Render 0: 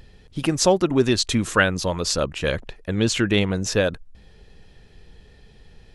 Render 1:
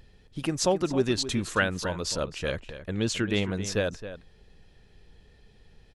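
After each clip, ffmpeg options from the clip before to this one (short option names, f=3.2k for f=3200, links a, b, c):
-filter_complex "[0:a]asplit=2[a][b];[b]adelay=268.2,volume=-12dB,highshelf=f=4k:g=-6.04[c];[a][c]amix=inputs=2:normalize=0,volume=-7dB"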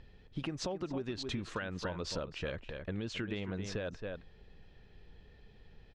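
-af "lowpass=3.8k,alimiter=limit=-21.5dB:level=0:latency=1:release=322,acompressor=threshold=-32dB:ratio=6,volume=-1.5dB"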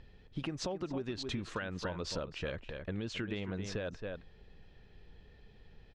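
-af anull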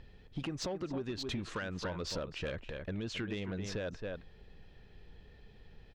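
-af "asoftclip=type=tanh:threshold=-30.5dB,volume=1.5dB"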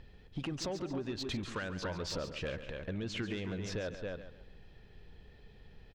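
-af "aecho=1:1:140|280|420:0.266|0.0825|0.0256"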